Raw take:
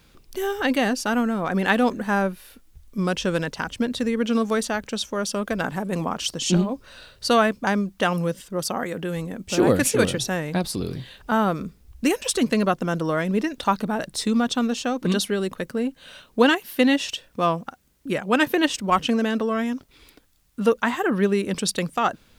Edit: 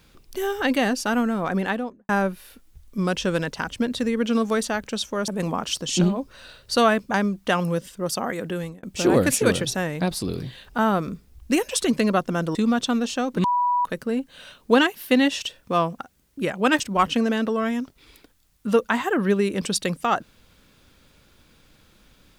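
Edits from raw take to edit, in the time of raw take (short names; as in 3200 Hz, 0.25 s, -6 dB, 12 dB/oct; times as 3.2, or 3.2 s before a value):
1.44–2.09 studio fade out
5.28–5.81 cut
9.1–9.36 fade out
13.08–14.23 cut
15.12–15.53 bleep 979 Hz -18 dBFS
18.48–18.73 cut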